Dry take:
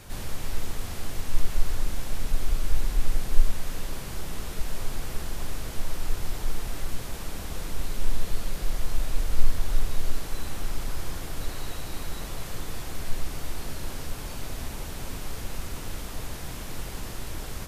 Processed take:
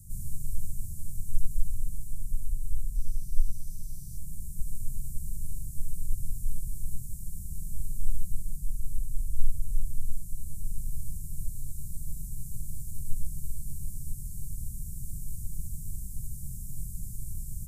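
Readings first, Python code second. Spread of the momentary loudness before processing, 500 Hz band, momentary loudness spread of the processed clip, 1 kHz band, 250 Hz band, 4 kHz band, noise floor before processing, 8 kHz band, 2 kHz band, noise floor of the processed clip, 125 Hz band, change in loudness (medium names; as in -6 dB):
6 LU, under -35 dB, 5 LU, under -40 dB, -9.0 dB, -25.0 dB, -37 dBFS, -3.5 dB, under -40 dB, -40 dBFS, -2.5 dB, -4.0 dB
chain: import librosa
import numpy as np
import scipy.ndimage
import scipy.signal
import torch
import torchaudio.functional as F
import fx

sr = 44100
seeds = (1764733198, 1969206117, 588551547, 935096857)

y = fx.spec_box(x, sr, start_s=2.95, length_s=1.22, low_hz=2900.0, high_hz=6300.0, gain_db=9)
y = fx.rider(y, sr, range_db=10, speed_s=2.0)
y = scipy.signal.sosfilt(scipy.signal.ellip(3, 1.0, 50, [160.0, 8000.0], 'bandstop', fs=sr, output='sos'), y)
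y = y * librosa.db_to_amplitude(-2.0)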